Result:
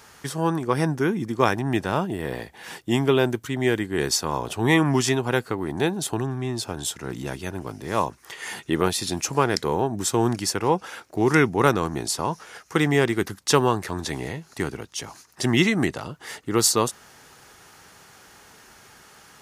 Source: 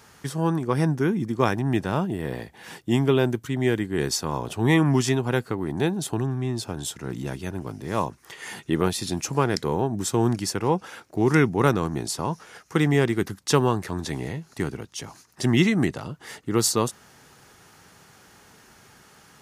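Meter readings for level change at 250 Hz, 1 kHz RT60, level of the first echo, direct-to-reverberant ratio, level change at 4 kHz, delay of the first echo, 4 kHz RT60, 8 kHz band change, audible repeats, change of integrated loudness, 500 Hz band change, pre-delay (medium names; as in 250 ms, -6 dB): -0.5 dB, no reverb, no echo, no reverb, +3.5 dB, no echo, no reverb, +3.5 dB, no echo, +0.5 dB, +1.5 dB, no reverb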